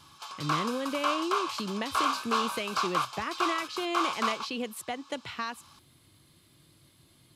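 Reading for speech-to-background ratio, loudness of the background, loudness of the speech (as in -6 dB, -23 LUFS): -3.0 dB, -31.5 LUFS, -34.5 LUFS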